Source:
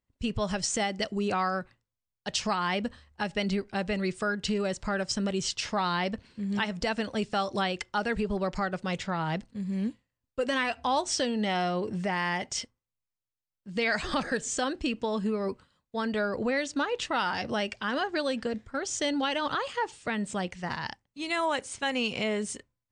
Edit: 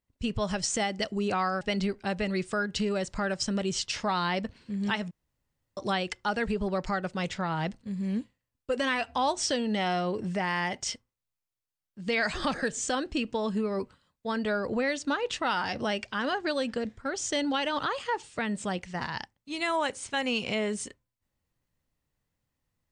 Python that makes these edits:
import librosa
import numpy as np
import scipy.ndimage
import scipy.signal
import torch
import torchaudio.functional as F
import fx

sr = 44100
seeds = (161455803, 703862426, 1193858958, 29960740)

y = fx.edit(x, sr, fx.cut(start_s=1.61, length_s=1.69),
    fx.room_tone_fill(start_s=6.8, length_s=0.66), tone=tone)